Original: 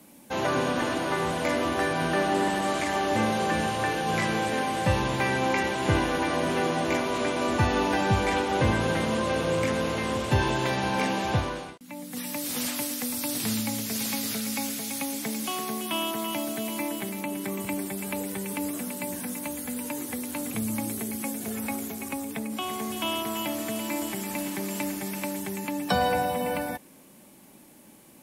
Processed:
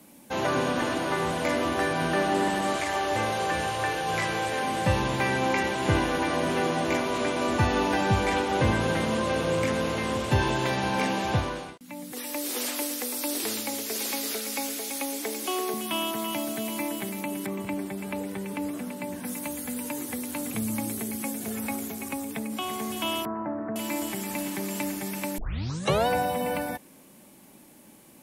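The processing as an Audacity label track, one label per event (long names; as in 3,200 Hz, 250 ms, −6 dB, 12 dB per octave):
2.760000	4.630000	parametric band 220 Hz −11 dB 0.83 octaves
12.120000	15.740000	low shelf with overshoot 240 Hz −14 dB, Q 3
17.460000	19.250000	high-shelf EQ 4,600 Hz −12 dB
23.250000	23.760000	Butterworth low-pass 1,700 Hz 48 dB per octave
25.380000	25.380000	tape start 0.69 s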